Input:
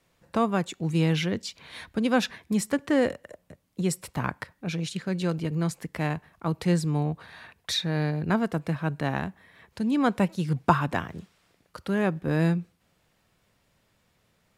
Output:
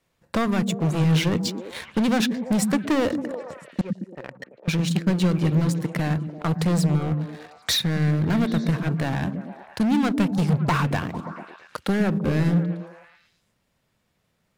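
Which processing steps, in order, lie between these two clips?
0:03.81–0:04.68: formant resonators in series e
leveller curve on the samples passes 2
brickwall limiter −11 dBFS, peak gain reduction 7.5 dB
gain into a clipping stage and back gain 19.5 dB
transient designer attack +3 dB, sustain −3 dB
echo through a band-pass that steps 112 ms, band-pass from 170 Hz, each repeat 0.7 octaves, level −2.5 dB

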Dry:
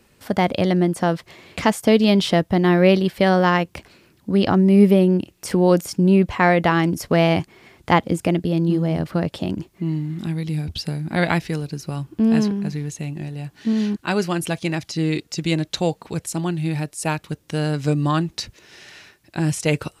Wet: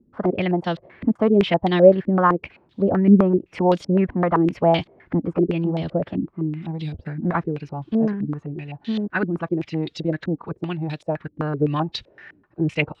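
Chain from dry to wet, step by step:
phase-vocoder stretch with locked phases 0.65×
low-pass on a step sequencer 7.8 Hz 280–3,600 Hz
level −4 dB

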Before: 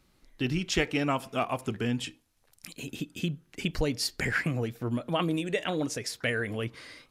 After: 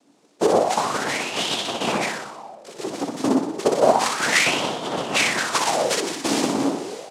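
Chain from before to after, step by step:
repeating echo 61 ms, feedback 59%, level −3.5 dB
0:00.56–0:01.69: downward compressor, threshold −27 dBFS, peak gain reduction 7 dB
0:05.16–0:06.00: spectral tilt +4 dB per octave
cochlear-implant simulation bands 2
high-pass filter 170 Hz 12 dB per octave
convolution reverb RT60 1.5 s, pre-delay 26 ms, DRR 10 dB
auto-filter bell 0.31 Hz 260–3,300 Hz +15 dB
level +3 dB

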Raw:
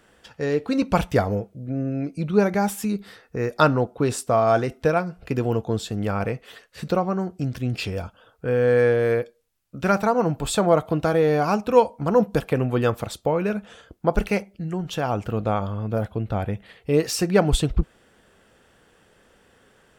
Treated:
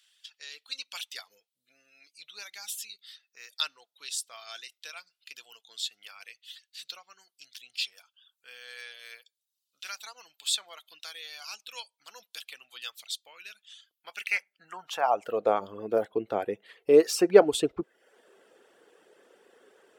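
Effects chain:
high-pass filter sweep 3,600 Hz → 390 Hz, 0:13.91–0:15.58
reverb reduction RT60 0.63 s
level −3.5 dB

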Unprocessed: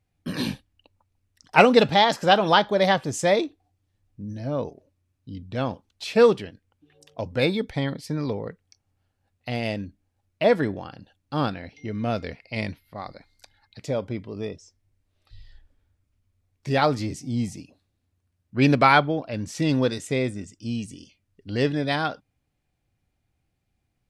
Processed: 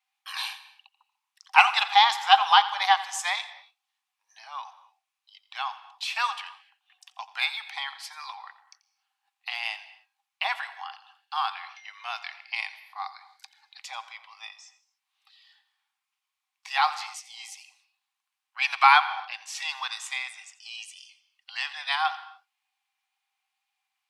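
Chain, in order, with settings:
dynamic equaliser 4,200 Hz, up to −3 dB, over −35 dBFS, Q 0.75
tape wow and flutter 29 cents
Chebyshev high-pass with heavy ripple 760 Hz, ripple 6 dB
on a send: convolution reverb, pre-delay 86 ms, DRR 13.5 dB
on the sum: level +5.5 dB

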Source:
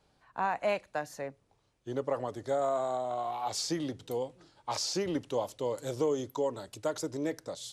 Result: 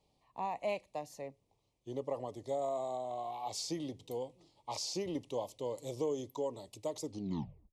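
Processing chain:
turntable brake at the end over 0.70 s
Butterworth band-reject 1,500 Hz, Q 1.5
level −5.5 dB

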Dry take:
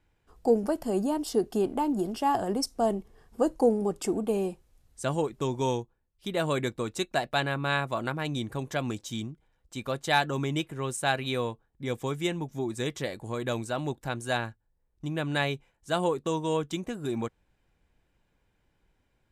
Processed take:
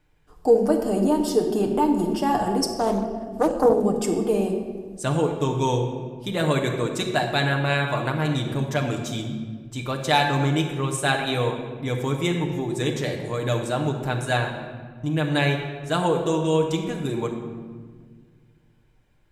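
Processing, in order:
on a send at −1.5 dB: convolution reverb RT60 1.6 s, pre-delay 7 ms
0:02.78–0:03.84: on the sum: highs frequency-modulated by the lows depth 0.35 ms
level +3.5 dB

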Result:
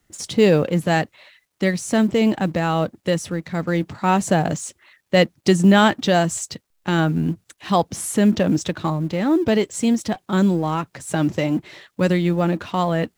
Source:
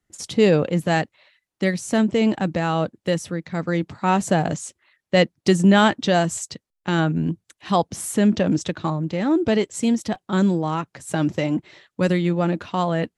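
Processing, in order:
mu-law and A-law mismatch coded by mu
level +1 dB

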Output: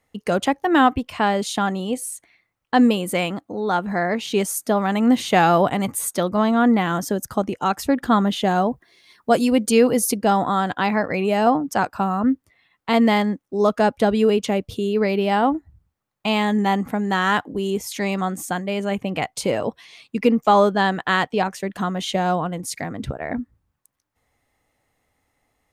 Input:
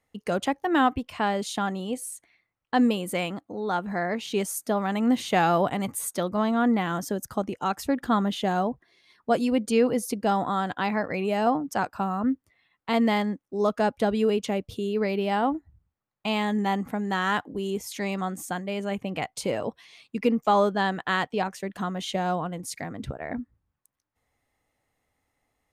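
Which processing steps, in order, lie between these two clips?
0:08.67–0:10.16: high-shelf EQ 8,300 Hz → 5,200 Hz +9 dB
level +6 dB

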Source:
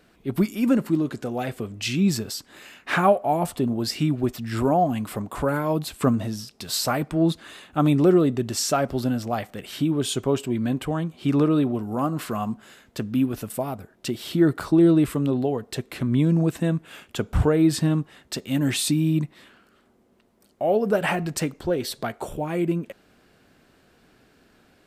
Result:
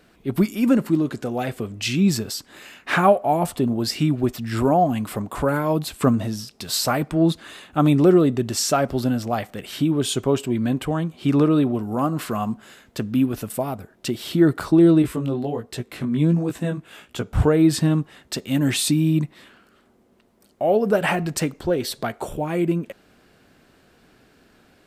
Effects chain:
0:15.02–0:17.38: chorus effect 1.4 Hz, delay 16 ms, depth 5.3 ms
level +2.5 dB

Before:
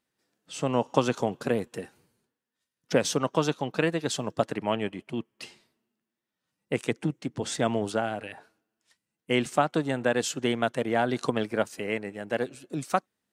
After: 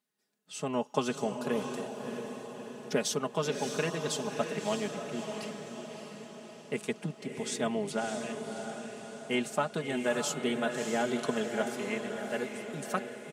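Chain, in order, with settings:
high-pass filter 85 Hz
high-shelf EQ 6,400 Hz +6 dB
comb filter 4.8 ms, depth 71%
feedback delay with all-pass diffusion 629 ms, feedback 55%, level −6 dB
level −7.5 dB

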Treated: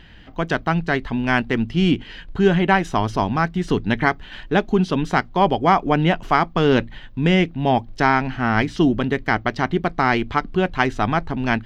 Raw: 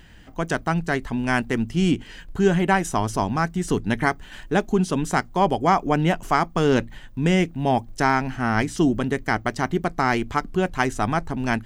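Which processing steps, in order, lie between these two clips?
high shelf with overshoot 5,700 Hz −14 dB, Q 1.5
level +2.5 dB

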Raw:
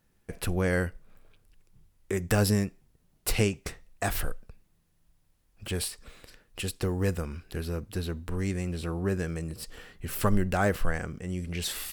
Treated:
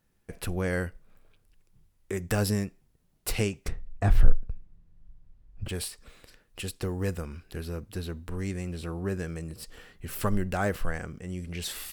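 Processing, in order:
0:03.68–0:05.69: RIAA equalisation playback
level −2.5 dB

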